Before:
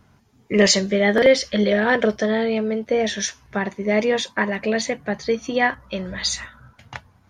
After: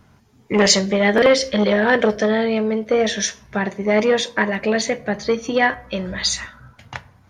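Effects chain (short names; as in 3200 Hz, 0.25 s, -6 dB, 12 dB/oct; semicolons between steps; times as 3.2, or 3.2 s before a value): on a send at -17 dB: bell 540 Hz +6 dB + reverb RT60 0.60 s, pre-delay 6 ms; on the sum: core saturation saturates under 690 Hz; gain +3 dB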